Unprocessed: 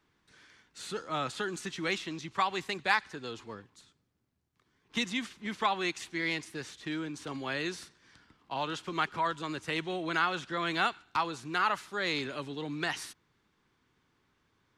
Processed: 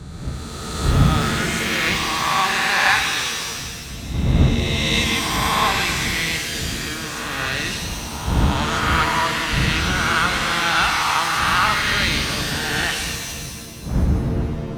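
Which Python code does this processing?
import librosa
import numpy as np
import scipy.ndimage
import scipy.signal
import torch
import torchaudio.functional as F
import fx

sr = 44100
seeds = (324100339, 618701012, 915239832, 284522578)

y = fx.spec_swells(x, sr, rise_s=2.25)
y = fx.dmg_wind(y, sr, seeds[0], corner_hz=200.0, level_db=-30.0)
y = scipy.signal.sosfilt(scipy.signal.butter(2, 41.0, 'highpass', fs=sr, output='sos'), y)
y = fx.peak_eq(y, sr, hz=370.0, db=-9.0, octaves=2.2)
y = fx.rev_shimmer(y, sr, seeds[1], rt60_s=1.7, semitones=7, shimmer_db=-2, drr_db=4.5)
y = F.gain(torch.from_numpy(y), 7.0).numpy()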